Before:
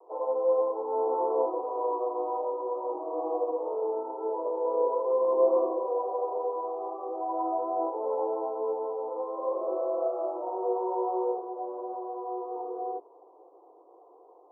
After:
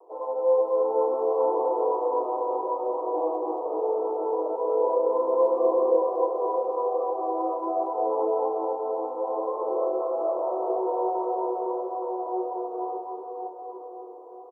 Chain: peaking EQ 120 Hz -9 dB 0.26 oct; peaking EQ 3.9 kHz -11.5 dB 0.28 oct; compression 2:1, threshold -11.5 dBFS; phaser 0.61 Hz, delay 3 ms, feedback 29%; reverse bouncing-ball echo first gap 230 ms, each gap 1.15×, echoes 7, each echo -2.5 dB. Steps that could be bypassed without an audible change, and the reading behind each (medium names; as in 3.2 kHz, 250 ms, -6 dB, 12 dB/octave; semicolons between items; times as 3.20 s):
peaking EQ 120 Hz: input has nothing below 250 Hz; peaking EQ 3.9 kHz: input has nothing above 1.1 kHz; compression, threshold -11.5 dBFS: peak at its input -13.5 dBFS